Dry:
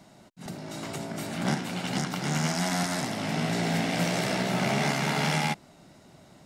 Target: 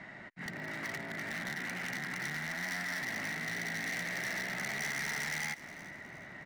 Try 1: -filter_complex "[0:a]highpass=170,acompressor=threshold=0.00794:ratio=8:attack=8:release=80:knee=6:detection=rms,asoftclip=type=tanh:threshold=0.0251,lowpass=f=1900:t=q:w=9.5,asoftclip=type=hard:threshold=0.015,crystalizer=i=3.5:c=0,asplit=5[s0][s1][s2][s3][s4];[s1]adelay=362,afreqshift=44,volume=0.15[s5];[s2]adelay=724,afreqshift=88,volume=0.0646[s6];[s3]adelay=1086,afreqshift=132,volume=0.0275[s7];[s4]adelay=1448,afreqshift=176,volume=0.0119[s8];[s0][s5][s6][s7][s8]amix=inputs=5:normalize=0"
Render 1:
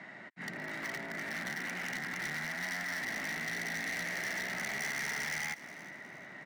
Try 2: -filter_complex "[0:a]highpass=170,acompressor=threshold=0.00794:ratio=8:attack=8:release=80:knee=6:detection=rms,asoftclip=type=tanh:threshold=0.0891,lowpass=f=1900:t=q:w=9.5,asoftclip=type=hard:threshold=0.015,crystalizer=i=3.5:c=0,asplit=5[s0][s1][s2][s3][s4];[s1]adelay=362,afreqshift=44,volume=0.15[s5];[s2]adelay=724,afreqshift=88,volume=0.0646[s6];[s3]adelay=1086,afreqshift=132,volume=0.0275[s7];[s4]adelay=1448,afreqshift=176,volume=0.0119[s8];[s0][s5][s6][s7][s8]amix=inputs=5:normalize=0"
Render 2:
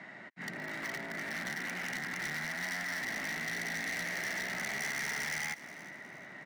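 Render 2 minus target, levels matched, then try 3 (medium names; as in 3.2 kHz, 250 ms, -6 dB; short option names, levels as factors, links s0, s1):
125 Hz band -3.5 dB
-filter_complex "[0:a]acompressor=threshold=0.00794:ratio=8:attack=8:release=80:knee=6:detection=rms,asoftclip=type=tanh:threshold=0.0891,lowpass=f=1900:t=q:w=9.5,asoftclip=type=hard:threshold=0.015,crystalizer=i=3.5:c=0,asplit=5[s0][s1][s2][s3][s4];[s1]adelay=362,afreqshift=44,volume=0.15[s5];[s2]adelay=724,afreqshift=88,volume=0.0646[s6];[s3]adelay=1086,afreqshift=132,volume=0.0275[s7];[s4]adelay=1448,afreqshift=176,volume=0.0119[s8];[s0][s5][s6][s7][s8]amix=inputs=5:normalize=0"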